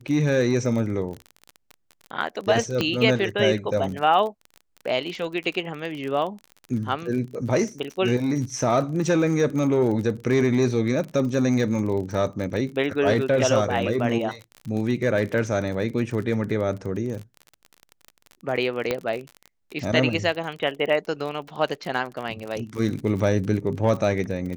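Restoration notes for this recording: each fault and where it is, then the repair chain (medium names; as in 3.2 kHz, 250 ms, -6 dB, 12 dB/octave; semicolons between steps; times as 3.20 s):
crackle 37 per s -30 dBFS
2.81 s: pop -10 dBFS
18.91 s: pop -10 dBFS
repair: de-click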